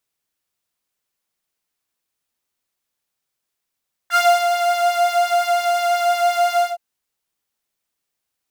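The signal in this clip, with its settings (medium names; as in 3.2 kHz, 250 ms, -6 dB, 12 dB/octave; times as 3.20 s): synth patch with pulse-width modulation F5, sub -27.5 dB, noise -18 dB, filter highpass, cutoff 660 Hz, Q 6.1, filter envelope 1.5 oct, filter decay 0.10 s, filter sustain 20%, attack 62 ms, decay 0.29 s, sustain -7 dB, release 0.17 s, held 2.50 s, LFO 5.7 Hz, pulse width 24%, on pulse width 17%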